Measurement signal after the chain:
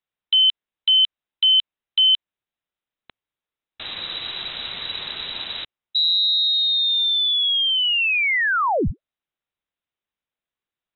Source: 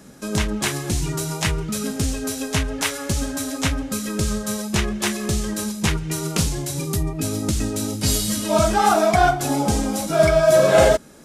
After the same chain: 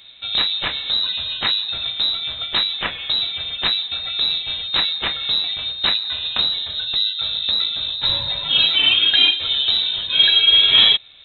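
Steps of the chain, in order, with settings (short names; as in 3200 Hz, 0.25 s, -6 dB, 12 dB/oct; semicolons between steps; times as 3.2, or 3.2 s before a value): inverted band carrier 3900 Hz; gain +1 dB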